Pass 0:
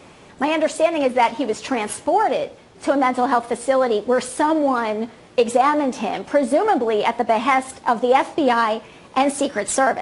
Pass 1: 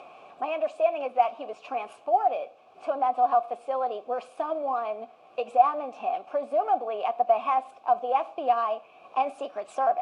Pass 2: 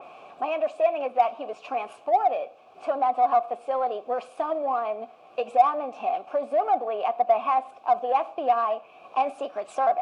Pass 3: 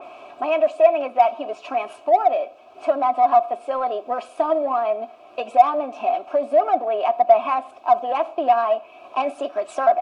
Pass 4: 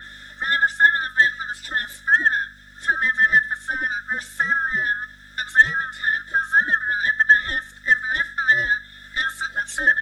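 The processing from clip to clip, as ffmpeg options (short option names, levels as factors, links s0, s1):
-filter_complex "[0:a]acompressor=mode=upward:threshold=0.0398:ratio=2.5,acrusher=bits=7:mix=0:aa=0.5,asplit=3[s0][s1][s2];[s0]bandpass=f=730:t=q:w=8,volume=1[s3];[s1]bandpass=f=1090:t=q:w=8,volume=0.501[s4];[s2]bandpass=f=2440:t=q:w=8,volume=0.355[s5];[s3][s4][s5]amix=inputs=3:normalize=0"
-filter_complex "[0:a]asplit=2[s0][s1];[s1]asoftclip=type=tanh:threshold=0.0631,volume=0.376[s2];[s0][s2]amix=inputs=2:normalize=0,adynamicequalizer=threshold=0.00891:dfrequency=3000:dqfactor=0.7:tfrequency=3000:tqfactor=0.7:attack=5:release=100:ratio=0.375:range=3:mode=cutabove:tftype=highshelf"
-af "aecho=1:1:3.1:0.6,volume=1.58"
-af "afftfilt=real='real(if(lt(b,960),b+48*(1-2*mod(floor(b/48),2)),b),0)':imag='imag(if(lt(b,960),b+48*(1-2*mod(floor(b/48),2)),b),0)':win_size=2048:overlap=0.75,aeval=exprs='val(0)+0.0112*(sin(2*PI*50*n/s)+sin(2*PI*2*50*n/s)/2+sin(2*PI*3*50*n/s)/3+sin(2*PI*4*50*n/s)/4+sin(2*PI*5*50*n/s)/5)':c=same,bass=f=250:g=-12,treble=f=4000:g=15,volume=0.891"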